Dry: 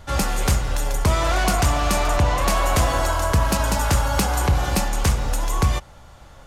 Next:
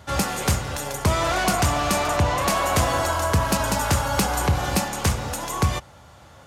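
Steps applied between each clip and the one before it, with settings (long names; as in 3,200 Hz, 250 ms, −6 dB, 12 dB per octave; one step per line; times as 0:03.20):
high-pass filter 73 Hz 24 dB per octave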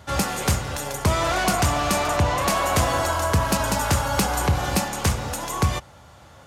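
no processing that can be heard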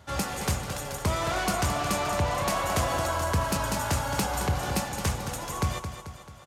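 repeating echo 219 ms, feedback 52%, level −9 dB
level −6.5 dB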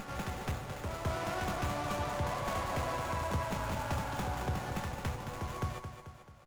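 backwards echo 211 ms −4 dB
windowed peak hold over 9 samples
level −8.5 dB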